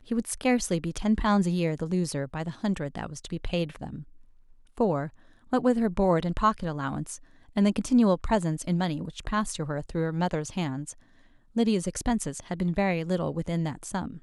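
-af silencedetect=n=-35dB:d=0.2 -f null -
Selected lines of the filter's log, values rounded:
silence_start: 4.02
silence_end: 4.78 | silence_duration: 0.76
silence_start: 5.08
silence_end: 5.53 | silence_duration: 0.45
silence_start: 7.16
silence_end: 7.56 | silence_duration: 0.40
silence_start: 10.92
silence_end: 11.56 | silence_duration: 0.65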